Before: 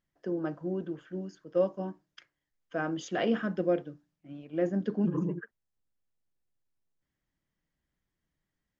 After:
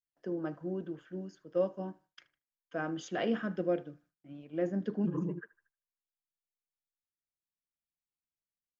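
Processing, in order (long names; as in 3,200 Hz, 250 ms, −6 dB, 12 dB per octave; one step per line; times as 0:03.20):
feedback echo with a band-pass in the loop 77 ms, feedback 52%, band-pass 1,600 Hz, level −19.5 dB
noise gate with hold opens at −60 dBFS
level −3.5 dB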